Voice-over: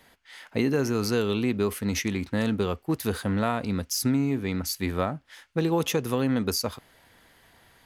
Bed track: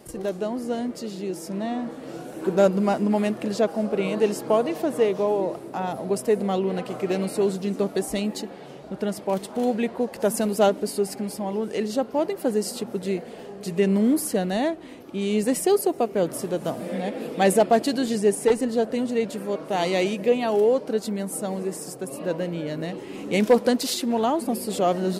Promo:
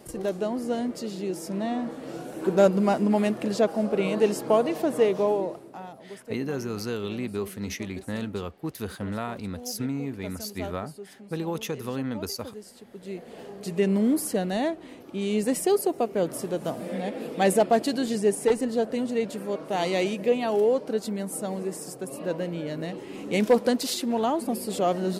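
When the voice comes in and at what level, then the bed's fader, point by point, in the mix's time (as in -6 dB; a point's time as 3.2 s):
5.75 s, -6.0 dB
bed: 5.29 s -0.5 dB
6.09 s -18 dB
12.83 s -18 dB
13.39 s -2.5 dB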